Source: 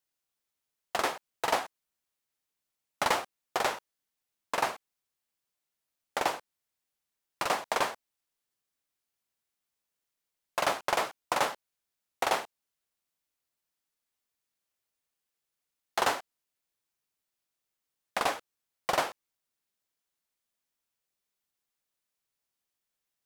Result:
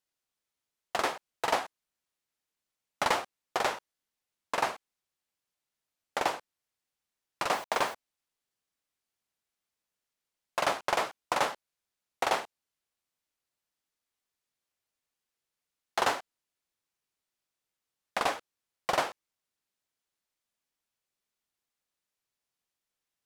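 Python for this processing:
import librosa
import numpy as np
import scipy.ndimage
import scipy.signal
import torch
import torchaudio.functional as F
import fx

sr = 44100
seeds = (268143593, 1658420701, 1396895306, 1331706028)

y = fx.high_shelf(x, sr, hz=12000.0, db=-8.5)
y = fx.quant_dither(y, sr, seeds[0], bits=8, dither='none', at=(7.5, 7.93), fade=0.02)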